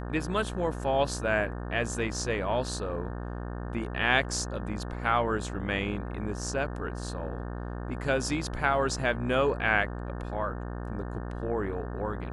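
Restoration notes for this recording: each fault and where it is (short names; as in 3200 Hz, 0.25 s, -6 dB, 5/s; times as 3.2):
buzz 60 Hz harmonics 30 -36 dBFS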